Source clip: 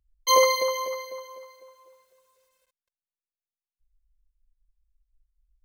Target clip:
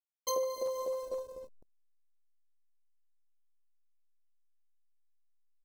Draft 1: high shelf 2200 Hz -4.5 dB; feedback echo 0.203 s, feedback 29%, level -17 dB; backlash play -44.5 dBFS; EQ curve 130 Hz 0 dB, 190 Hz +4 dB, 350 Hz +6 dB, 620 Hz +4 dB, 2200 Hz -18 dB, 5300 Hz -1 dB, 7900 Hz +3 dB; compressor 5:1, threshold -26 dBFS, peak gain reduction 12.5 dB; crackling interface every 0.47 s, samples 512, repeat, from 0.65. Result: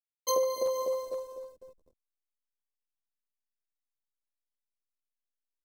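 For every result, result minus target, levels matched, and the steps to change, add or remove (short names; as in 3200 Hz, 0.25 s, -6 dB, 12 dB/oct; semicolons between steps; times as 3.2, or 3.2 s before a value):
compressor: peak gain reduction -5 dB; backlash: distortion -6 dB
change: compressor 5:1, threshold -32.5 dBFS, peak gain reduction 17.5 dB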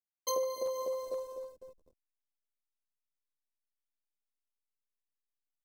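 backlash: distortion -6 dB
change: backlash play -37.5 dBFS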